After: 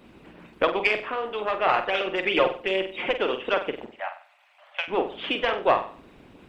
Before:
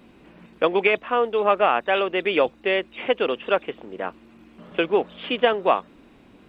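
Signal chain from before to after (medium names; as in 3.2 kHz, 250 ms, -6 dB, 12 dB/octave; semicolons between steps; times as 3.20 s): single-diode clipper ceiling -7.5 dBFS; 1.68–3.13 s: comb 5.6 ms, depth 79%; in parallel at -3 dB: compression, threshold -28 dBFS, peak gain reduction 15 dB; 3.86–4.88 s: on the sum: rippled Chebyshev high-pass 560 Hz, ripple 6 dB; flutter echo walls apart 8.1 m, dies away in 0.44 s; harmonic-percussive split harmonic -11 dB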